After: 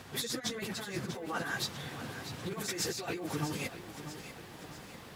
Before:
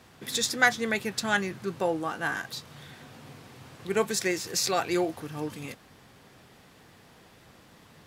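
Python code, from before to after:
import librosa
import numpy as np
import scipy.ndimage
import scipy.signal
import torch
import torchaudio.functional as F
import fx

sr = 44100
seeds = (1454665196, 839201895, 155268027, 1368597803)

y = fx.over_compress(x, sr, threshold_db=-36.0, ratio=-1.0)
y = fx.stretch_vocoder_free(y, sr, factor=0.64)
y = fx.echo_crushed(y, sr, ms=643, feedback_pct=55, bits=10, wet_db=-11)
y = y * librosa.db_to_amplitude(2.0)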